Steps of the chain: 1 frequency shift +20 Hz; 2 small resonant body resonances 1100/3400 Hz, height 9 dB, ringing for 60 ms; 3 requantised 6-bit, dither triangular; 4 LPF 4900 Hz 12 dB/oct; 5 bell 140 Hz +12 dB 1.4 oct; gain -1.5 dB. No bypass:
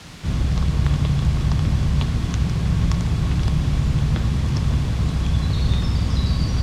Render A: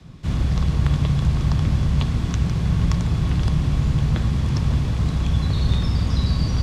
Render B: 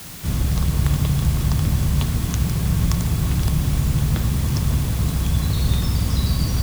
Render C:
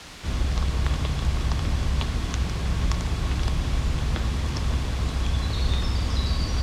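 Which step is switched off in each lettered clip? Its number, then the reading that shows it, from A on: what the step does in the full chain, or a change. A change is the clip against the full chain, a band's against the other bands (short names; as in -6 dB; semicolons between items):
3, distortion -14 dB; 4, 8 kHz band +8.5 dB; 5, 250 Hz band -8.0 dB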